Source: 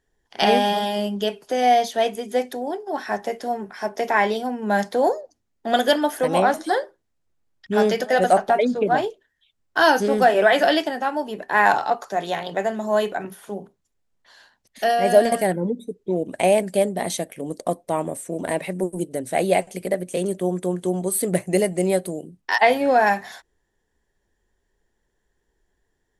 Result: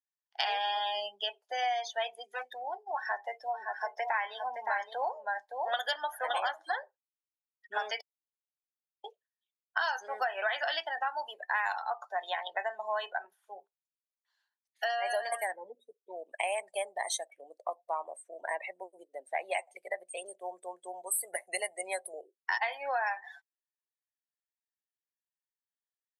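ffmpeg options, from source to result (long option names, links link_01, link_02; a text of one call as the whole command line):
ffmpeg -i in.wav -filter_complex "[0:a]asettb=1/sr,asplit=3[link_01][link_02][link_03];[link_01]atrim=end=2.204[link_04];[link_02]atrim=start=2.2:end=2.62,asetpts=PTS-STARTPTS,afade=type=in:duration=0.004:curve=qsin,afade=type=out:start_time=0.416:duration=0.004:curve=qsin,asoftclip=type=hard:threshold=-23.5dB[link_05];[link_03]atrim=start=2.616[link_06];[link_04][link_05]acrossfade=duration=0.004:curve1=hsin:curve2=qsin[link_07];[link_07][link_06]acrossfade=duration=0.004:curve1=qsin:curve2=hsin,asplit=3[link_08][link_09][link_10];[link_08]afade=type=out:start_time=3.53:duration=0.02[link_11];[link_09]aecho=1:1:567:0.501,afade=type=in:start_time=3.53:duration=0.02,afade=type=out:start_time=6.51:duration=0.02[link_12];[link_10]afade=type=in:start_time=6.51:duration=0.02[link_13];[link_11][link_12][link_13]amix=inputs=3:normalize=0,asettb=1/sr,asplit=3[link_14][link_15][link_16];[link_14]atrim=end=11.074[link_17];[link_15]atrim=start=11.07:end=11.83,asetpts=PTS-STARTPTS,afade=type=in:duration=0.004:curve=qsin,afade=type=out:start_time=0.756:duration=0.004:curve=qsin,highshelf=frequency=4500:gain=9.5[link_18];[link_16]atrim=start=11.826[link_19];[link_17][link_18]acrossfade=duration=0.004:curve1=hsin:curve2=qsin[link_20];[link_20][link_19]acrossfade=duration=0.004:curve1=qsin:curve2=hsin,asettb=1/sr,asplit=3[link_21][link_22][link_23];[link_21]atrim=end=17.264[link_24];[link_22]atrim=start=17.26:end=19.51,asetpts=PTS-STARTPTS,afade=type=in:duration=0.004:curve=qsin,afade=type=out:start_time=2.246:duration=0.004:curve=qsin,highshelf=frequency=3900:gain=-6.5[link_25];[link_23]atrim=start=19.506[link_26];[link_24][link_25]acrossfade=duration=0.004:curve1=hsin:curve2=qsin[link_27];[link_27][link_26]acrossfade=duration=0.004:curve1=qsin:curve2=hsin,asettb=1/sr,asplit=3[link_28][link_29][link_30];[link_28]atrim=end=22.134[link_31];[link_29]atrim=start=22.13:end=22.55,asetpts=PTS-STARTPTS,afade=type=in:duration=0.004:curve=qsin,afade=type=out:start_time=0.416:duration=0.004:curve=qsin,highpass=frequency=400:width_type=q:width=4.8[link_32];[link_30]atrim=start=22.546[link_33];[link_31][link_32]acrossfade=duration=0.004:curve1=hsin:curve2=qsin[link_34];[link_34][link_33]acrossfade=duration=0.004:curve1=qsin:curve2=hsin,asplit=3[link_35][link_36][link_37];[link_35]atrim=end=8.01,asetpts=PTS-STARTPTS,afade=type=out:start_time=8.006:duration=0.004:curve=hsin[link_38];[link_36]atrim=start=8.01:end=9.04,asetpts=PTS-STARTPTS,volume=0[link_39];[link_37]atrim=start=9.04,asetpts=PTS-STARTPTS,afade=type=in:duration=0.004:curve=hsin[link_40];[link_38][link_39][link_40]concat=n=3:v=0:a=1,afftdn=noise_reduction=29:noise_floor=-31,highpass=frequency=840:width=0.5412,highpass=frequency=840:width=1.3066,acompressor=threshold=-29dB:ratio=6" out.wav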